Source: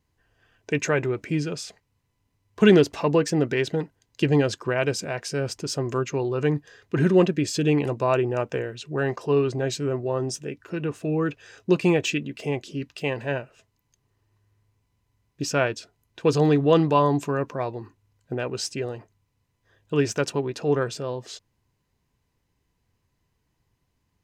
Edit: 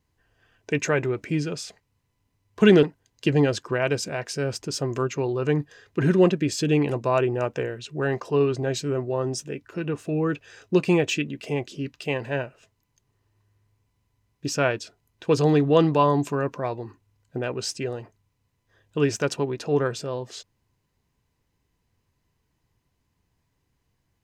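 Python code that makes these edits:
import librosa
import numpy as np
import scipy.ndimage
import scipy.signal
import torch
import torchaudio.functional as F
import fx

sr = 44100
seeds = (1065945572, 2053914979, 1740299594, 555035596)

y = fx.edit(x, sr, fx.cut(start_s=2.83, length_s=0.96), tone=tone)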